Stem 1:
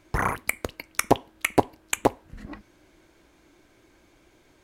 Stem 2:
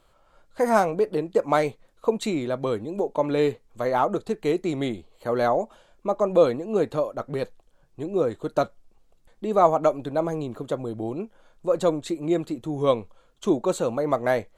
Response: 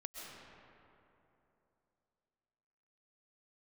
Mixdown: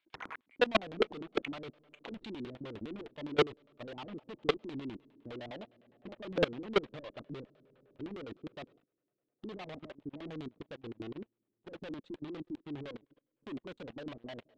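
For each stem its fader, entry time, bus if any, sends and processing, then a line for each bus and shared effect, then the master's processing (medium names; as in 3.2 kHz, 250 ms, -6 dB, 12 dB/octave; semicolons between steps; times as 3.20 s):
+0.5 dB, 0.00 s, no send, band-pass filter 3.3 kHz, Q 0.64; auto duck -13 dB, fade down 0.35 s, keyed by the second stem
7.81 s -7.5 dB -> 8.49 s -20 dB, 0.00 s, send -24 dB, fuzz box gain 33 dB, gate -38 dBFS; upward expansion 2.5:1, over -26 dBFS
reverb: on, RT60 3.0 s, pre-delay 90 ms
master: level held to a coarse grid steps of 22 dB; LFO low-pass square 9.8 Hz 290–3400 Hz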